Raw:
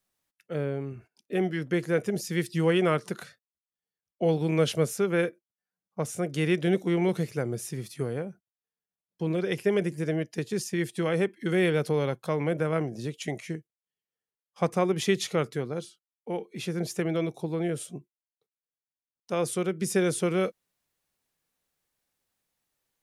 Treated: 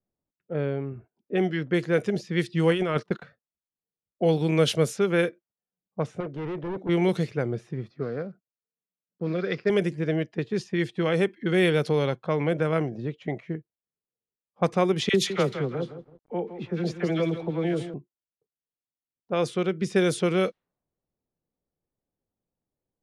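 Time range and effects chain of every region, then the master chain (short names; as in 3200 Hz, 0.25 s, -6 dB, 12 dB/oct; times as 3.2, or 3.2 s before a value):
2.71–3.22 gate -40 dBFS, range -24 dB + negative-ratio compressor -26 dBFS, ratio -0.5
6.2–6.89 low shelf 140 Hz -7.5 dB + hard clip -31.5 dBFS
7.9–9.7 block floating point 5-bit + speaker cabinet 160–6100 Hz, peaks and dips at 350 Hz -4 dB, 880 Hz -9 dB, 1300 Hz +5 dB, 3000 Hz -8 dB, 4800 Hz +9 dB
15.09–17.94 dispersion lows, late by 49 ms, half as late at 1100 Hz + lo-fi delay 0.164 s, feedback 35%, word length 8-bit, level -10.5 dB
whole clip: low-pass opened by the level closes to 500 Hz, open at -20.5 dBFS; bell 3700 Hz +4 dB 0.79 oct; gain +2.5 dB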